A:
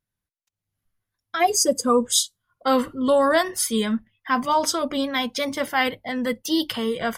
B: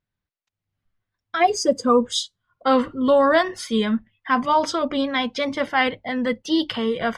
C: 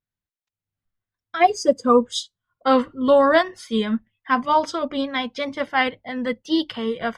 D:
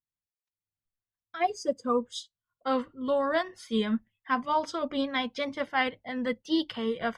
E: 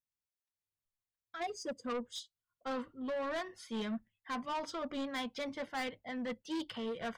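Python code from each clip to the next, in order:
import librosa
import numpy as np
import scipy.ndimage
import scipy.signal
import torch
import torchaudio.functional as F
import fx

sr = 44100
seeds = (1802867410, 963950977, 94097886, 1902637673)

y1 = scipy.signal.sosfilt(scipy.signal.butter(2, 3900.0, 'lowpass', fs=sr, output='sos'), x)
y1 = y1 * librosa.db_to_amplitude(2.0)
y2 = fx.upward_expand(y1, sr, threshold_db=-32.0, expansion=1.5)
y2 = y2 * librosa.db_to_amplitude(2.5)
y3 = fx.rider(y2, sr, range_db=4, speed_s=0.5)
y3 = y3 * librosa.db_to_amplitude(-8.5)
y4 = 10.0 ** (-29.0 / 20.0) * np.tanh(y3 / 10.0 ** (-29.0 / 20.0))
y4 = y4 * librosa.db_to_amplitude(-4.5)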